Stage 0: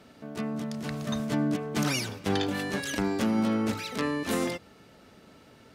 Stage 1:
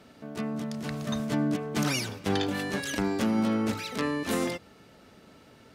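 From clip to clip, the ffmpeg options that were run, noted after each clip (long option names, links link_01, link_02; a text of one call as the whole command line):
ffmpeg -i in.wav -af anull out.wav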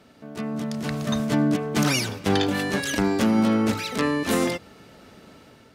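ffmpeg -i in.wav -af "dynaudnorm=framelen=210:gausssize=5:maxgain=6dB,aeval=exprs='0.251*(abs(mod(val(0)/0.251+3,4)-2)-1)':channel_layout=same" out.wav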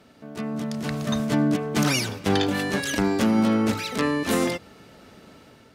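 ffmpeg -i in.wav -ar 44100 -c:a libmp3lame -b:a 192k out.mp3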